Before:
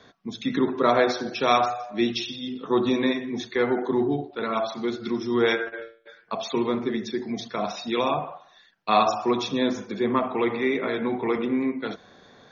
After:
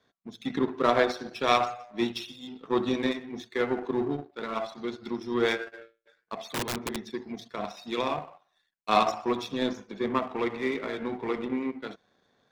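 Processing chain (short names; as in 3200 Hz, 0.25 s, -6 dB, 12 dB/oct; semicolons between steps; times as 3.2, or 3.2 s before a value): power-law curve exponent 1.4; 6.52–7.09 wrapped overs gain 24 dB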